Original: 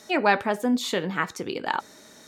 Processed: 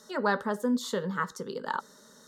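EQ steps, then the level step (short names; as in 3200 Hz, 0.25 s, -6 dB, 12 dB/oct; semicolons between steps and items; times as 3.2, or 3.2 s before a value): high shelf 7700 Hz -4 dB; fixed phaser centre 480 Hz, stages 8; -2.0 dB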